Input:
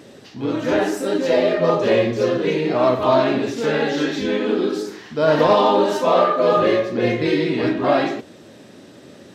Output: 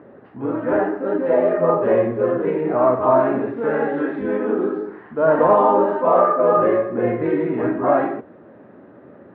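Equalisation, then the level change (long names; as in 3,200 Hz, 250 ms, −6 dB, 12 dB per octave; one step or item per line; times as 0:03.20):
low-pass filter 1,500 Hz 24 dB per octave
low-shelf EQ 430 Hz −5.5 dB
mains-hum notches 50/100/150 Hz
+2.5 dB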